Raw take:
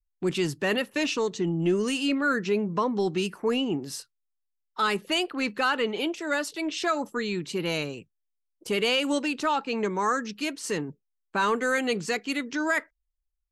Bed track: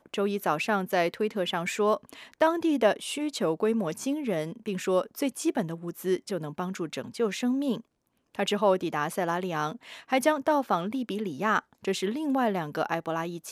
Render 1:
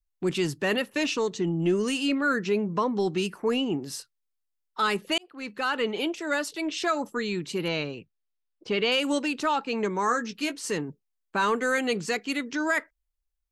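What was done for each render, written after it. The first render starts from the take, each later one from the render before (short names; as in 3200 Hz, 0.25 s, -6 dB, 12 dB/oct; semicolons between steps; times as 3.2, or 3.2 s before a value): 5.18–5.86 fade in; 7.68–8.92 LPF 5000 Hz 24 dB/oct; 10.06–10.68 doubler 17 ms -9 dB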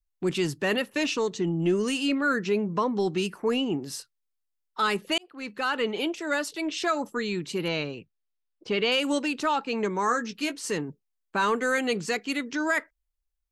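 nothing audible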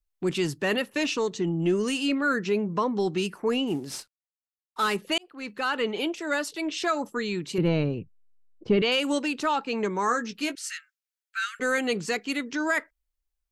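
3.67–4.96 CVSD 64 kbps; 7.58–8.82 tilt -4 dB/oct; 10.55–11.6 Chebyshev high-pass 1300 Hz, order 8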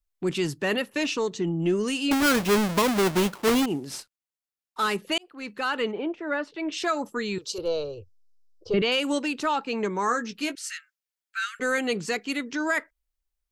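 2.11–3.66 half-waves squared off; 5.91–6.71 LPF 1200 Hz -> 2900 Hz; 7.38–8.74 EQ curve 100 Hz 0 dB, 160 Hz -24 dB, 240 Hz -25 dB, 490 Hz +4 dB, 830 Hz -6 dB, 1300 Hz -2 dB, 2000 Hz -22 dB, 3200 Hz -1 dB, 5200 Hz +11 dB, 8800 Hz +1 dB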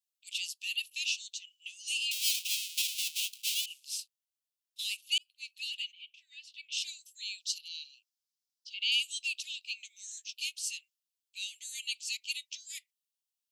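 steep high-pass 2600 Hz 72 dB/oct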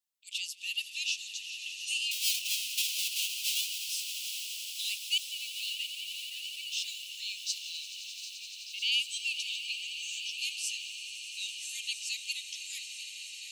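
regenerating reverse delay 0.656 s, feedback 77%, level -13 dB; swelling echo 86 ms, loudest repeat 8, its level -16 dB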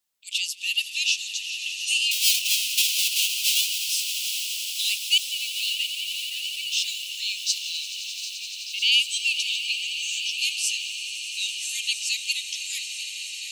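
gain +9.5 dB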